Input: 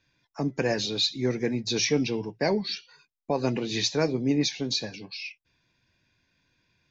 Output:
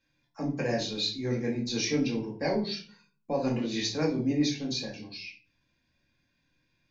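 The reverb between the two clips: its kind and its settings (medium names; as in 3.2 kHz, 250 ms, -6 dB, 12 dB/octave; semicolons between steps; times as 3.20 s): simulated room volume 320 m³, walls furnished, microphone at 2.2 m; trim -8 dB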